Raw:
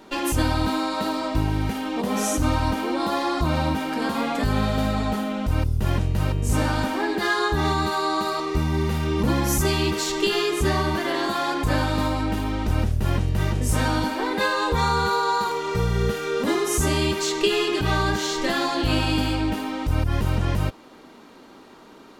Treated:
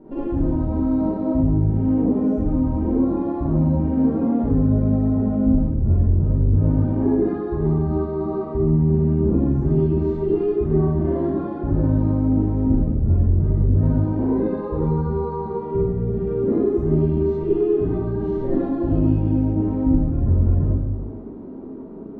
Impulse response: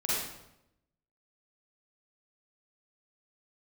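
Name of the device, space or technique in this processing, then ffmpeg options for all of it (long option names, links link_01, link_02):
television next door: -filter_complex "[0:a]acompressor=threshold=-28dB:ratio=6,lowpass=350[link_01];[1:a]atrim=start_sample=2205[link_02];[link_01][link_02]afir=irnorm=-1:irlink=0,volume=6.5dB"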